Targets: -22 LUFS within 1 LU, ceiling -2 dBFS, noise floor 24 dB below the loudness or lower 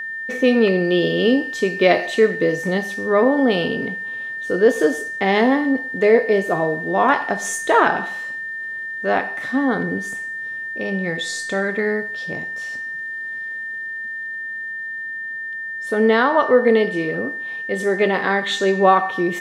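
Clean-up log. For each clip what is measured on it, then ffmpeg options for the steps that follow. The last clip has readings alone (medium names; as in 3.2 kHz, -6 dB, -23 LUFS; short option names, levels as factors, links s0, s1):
steady tone 1.8 kHz; tone level -26 dBFS; loudness -20.0 LUFS; peak level -1.5 dBFS; loudness target -22.0 LUFS
-> -af "bandreject=f=1800:w=30"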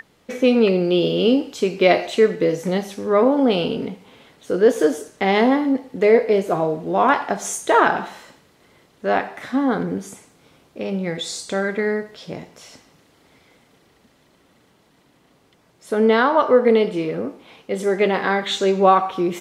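steady tone not found; loudness -19.0 LUFS; peak level -2.0 dBFS; loudness target -22.0 LUFS
-> -af "volume=0.708"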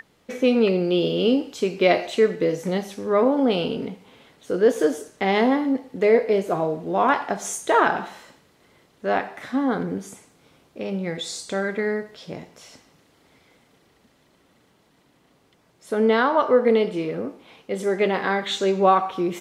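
loudness -22.0 LUFS; peak level -5.0 dBFS; noise floor -61 dBFS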